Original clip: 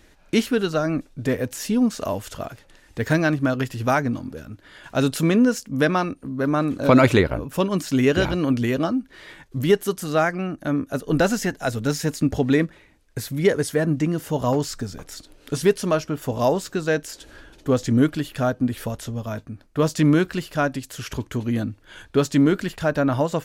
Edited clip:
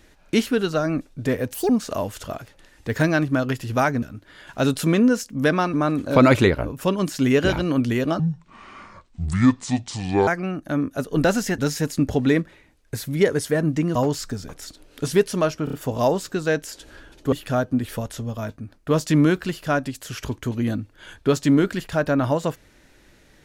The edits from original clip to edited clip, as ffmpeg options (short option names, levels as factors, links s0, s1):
-filter_complex "[0:a]asplit=13[s0][s1][s2][s3][s4][s5][s6][s7][s8][s9][s10][s11][s12];[s0]atrim=end=1.544[s13];[s1]atrim=start=1.54:end=1.8,asetpts=PTS-STARTPTS,asetrate=74529,aresample=44100[s14];[s2]atrim=start=1.796:end=4.132[s15];[s3]atrim=start=4.388:end=6.102[s16];[s4]atrim=start=6.458:end=8.924[s17];[s5]atrim=start=8.92:end=10.23,asetpts=PTS-STARTPTS,asetrate=27783,aresample=44100[s18];[s6]atrim=start=10.226:end=11.542[s19];[s7]atrim=start=11.818:end=14.192[s20];[s8]atrim=start=14.448:end=16.172[s21];[s9]atrim=start=16.138:end=16.172[s22];[s10]atrim=start=16.138:end=16.172[s23];[s11]atrim=start=16.138:end=17.732[s24];[s12]atrim=start=18.208[s25];[s13][s14]acrossfade=d=0.004:c1=hsin:c2=hsin[s26];[s26][s15]acrossfade=d=0.004:c1=hsin:c2=hsin[s27];[s27][s16]acrossfade=d=0.004:c1=hsin:c2=hsin[s28];[s28][s17]acrossfade=d=0.004:c1=hsin:c2=hsin[s29];[s29][s18]acrossfade=d=0.004:c1=hsin:c2=hsin[s30];[s30][s19]acrossfade=d=0.004:c1=hsin:c2=hsin[s31];[s31][s20]acrossfade=d=0.004:c1=hsin:c2=hsin[s32];[s32][s21]acrossfade=d=0.004:c1=hsin:c2=hsin[s33];[s33][s22]acrossfade=d=0.004:c1=hsin:c2=hsin[s34];[s34][s23]acrossfade=d=0.004:c1=hsin:c2=hsin[s35];[s35][s24]acrossfade=d=0.004:c1=hsin:c2=hsin[s36];[s36][s25]acrossfade=d=0.004:c1=hsin:c2=hsin"